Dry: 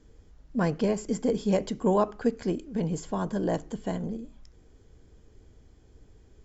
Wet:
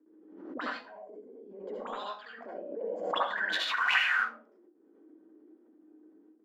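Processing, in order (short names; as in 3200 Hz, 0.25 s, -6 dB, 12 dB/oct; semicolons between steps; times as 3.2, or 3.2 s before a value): 3.52–4.16 spectral whitening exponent 0.1; gate with hold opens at -46 dBFS; Chebyshev high-pass 190 Hz, order 8; bell 1400 Hz +14.5 dB 2.5 oct; notches 60/120/180/240/300/360 Hz; 0.71–1.63 flipped gate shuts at -24 dBFS, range -24 dB; 2.21–2.94 level quantiser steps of 17 dB; auto-wah 310–3700 Hz, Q 13, up, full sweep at -18.5 dBFS; reverb RT60 0.40 s, pre-delay 66 ms, DRR -5 dB; backwards sustainer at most 55 dB/s; gain +5 dB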